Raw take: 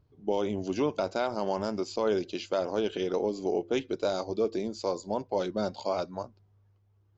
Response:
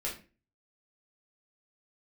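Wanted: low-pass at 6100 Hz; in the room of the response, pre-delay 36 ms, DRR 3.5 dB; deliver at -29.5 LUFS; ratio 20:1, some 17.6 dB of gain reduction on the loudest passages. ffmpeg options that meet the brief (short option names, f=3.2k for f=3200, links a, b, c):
-filter_complex "[0:a]lowpass=6.1k,acompressor=threshold=-41dB:ratio=20,asplit=2[a][b];[1:a]atrim=start_sample=2205,adelay=36[c];[b][c]afir=irnorm=-1:irlink=0,volume=-6.5dB[d];[a][d]amix=inputs=2:normalize=0,volume=15.5dB"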